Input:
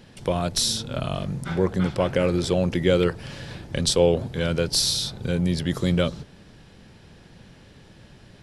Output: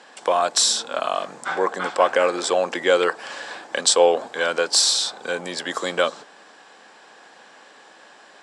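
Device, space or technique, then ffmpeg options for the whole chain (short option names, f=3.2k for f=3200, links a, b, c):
phone speaker on a table: -af "highpass=f=340:w=0.5412,highpass=f=340:w=1.3066,equalizer=f=370:t=q:w=4:g=-6,equalizer=f=770:t=q:w=4:g=8,equalizer=f=1.1k:t=q:w=4:g=9,equalizer=f=1.6k:t=q:w=4:g=7,equalizer=f=7.7k:t=q:w=4:g=9,lowpass=f=8.8k:w=0.5412,lowpass=f=8.8k:w=1.3066,volume=3.5dB"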